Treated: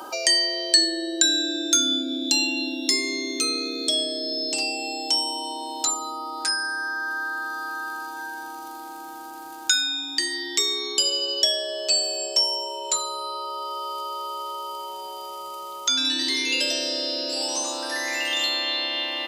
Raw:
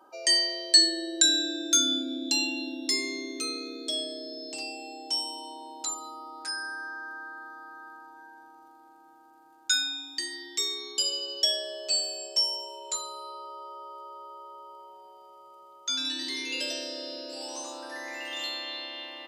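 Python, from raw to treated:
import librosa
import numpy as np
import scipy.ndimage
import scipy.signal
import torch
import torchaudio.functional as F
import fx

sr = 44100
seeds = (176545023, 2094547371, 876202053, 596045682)

y = fx.band_squash(x, sr, depth_pct=70)
y = y * librosa.db_to_amplitude(7.0)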